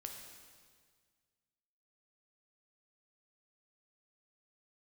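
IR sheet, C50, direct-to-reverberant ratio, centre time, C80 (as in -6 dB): 4.0 dB, 2.0 dB, 53 ms, 5.5 dB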